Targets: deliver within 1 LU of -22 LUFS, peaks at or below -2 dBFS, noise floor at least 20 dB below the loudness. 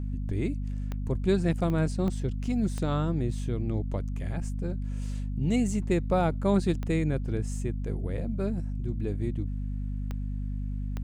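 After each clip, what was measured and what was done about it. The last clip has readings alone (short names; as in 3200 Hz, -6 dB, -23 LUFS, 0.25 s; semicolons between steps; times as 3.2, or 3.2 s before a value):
clicks 7; hum 50 Hz; harmonics up to 250 Hz; hum level -29 dBFS; loudness -30.0 LUFS; peak -12.5 dBFS; loudness target -22.0 LUFS
-> de-click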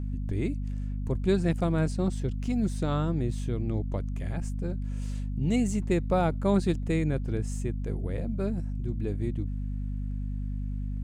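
clicks 0; hum 50 Hz; harmonics up to 250 Hz; hum level -29 dBFS
-> de-hum 50 Hz, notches 5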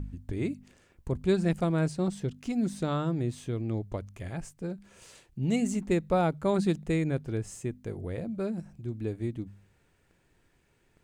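hum none; loudness -31.0 LUFS; peak -13.5 dBFS; loudness target -22.0 LUFS
-> gain +9 dB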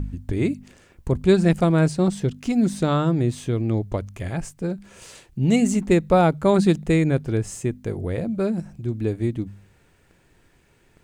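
loudness -22.0 LUFS; peak -4.5 dBFS; noise floor -59 dBFS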